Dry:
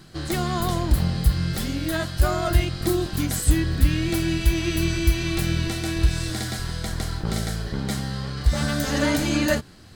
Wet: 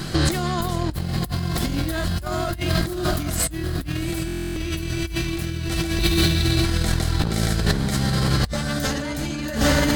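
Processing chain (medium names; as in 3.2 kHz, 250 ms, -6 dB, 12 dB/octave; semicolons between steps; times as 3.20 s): 5.99–6.65 s: Butterworth band-pass 3.9 kHz, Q 4.4; on a send: echo that smears into a reverb 797 ms, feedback 47%, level -8 dB; on the sum: compressor with a negative ratio -33 dBFS, ratio -1; buffer glitch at 4.26 s, samples 1024, times 12; trim +9 dB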